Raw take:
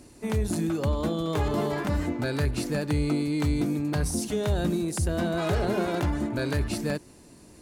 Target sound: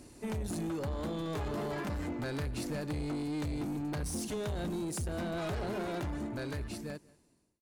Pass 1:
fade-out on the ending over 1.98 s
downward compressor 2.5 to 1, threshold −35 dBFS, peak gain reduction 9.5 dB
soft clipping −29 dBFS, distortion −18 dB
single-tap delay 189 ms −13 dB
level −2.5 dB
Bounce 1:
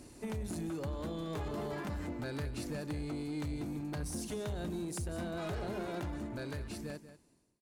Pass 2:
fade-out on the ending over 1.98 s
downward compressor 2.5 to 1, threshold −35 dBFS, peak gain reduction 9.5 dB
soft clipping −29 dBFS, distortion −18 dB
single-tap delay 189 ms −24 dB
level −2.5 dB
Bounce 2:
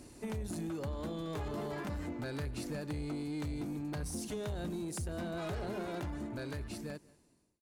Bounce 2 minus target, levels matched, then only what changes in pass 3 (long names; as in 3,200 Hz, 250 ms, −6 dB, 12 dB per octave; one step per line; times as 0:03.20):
downward compressor: peak gain reduction +5 dB
change: downward compressor 2.5 to 1, threshold −26.5 dBFS, peak gain reduction 4.5 dB